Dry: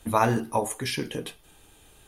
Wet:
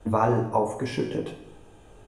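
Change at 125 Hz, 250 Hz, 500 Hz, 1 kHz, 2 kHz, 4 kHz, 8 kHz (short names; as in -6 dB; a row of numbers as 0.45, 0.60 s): +2.5, +2.0, +3.0, 0.0, -5.0, -8.0, -12.0 dB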